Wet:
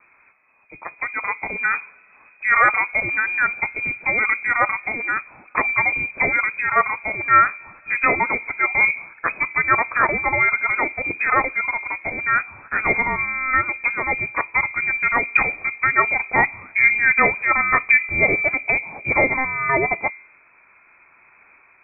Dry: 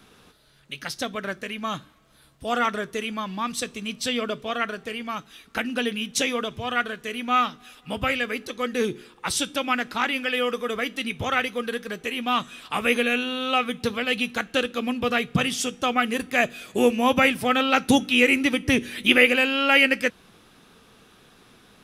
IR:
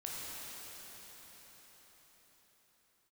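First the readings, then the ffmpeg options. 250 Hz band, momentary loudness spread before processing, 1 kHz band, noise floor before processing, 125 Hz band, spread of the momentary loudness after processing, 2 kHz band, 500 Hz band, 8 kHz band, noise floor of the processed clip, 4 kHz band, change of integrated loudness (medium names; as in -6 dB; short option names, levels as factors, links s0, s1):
-8.5 dB, 13 LU, +5.5 dB, -55 dBFS, +1.0 dB, 10 LU, +8.0 dB, -2.5 dB, under -40 dB, -54 dBFS, under -40 dB, +5.0 dB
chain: -af "dynaudnorm=f=860:g=3:m=3.76,bandreject=f=80.02:t=h:w=4,bandreject=f=160.04:t=h:w=4,bandreject=f=240.06:t=h:w=4,bandreject=f=320.08:t=h:w=4,bandreject=f=400.1:t=h:w=4,bandreject=f=480.12:t=h:w=4,bandreject=f=560.14:t=h:w=4,lowpass=f=2200:t=q:w=0.5098,lowpass=f=2200:t=q:w=0.6013,lowpass=f=2200:t=q:w=0.9,lowpass=f=2200:t=q:w=2.563,afreqshift=-2600"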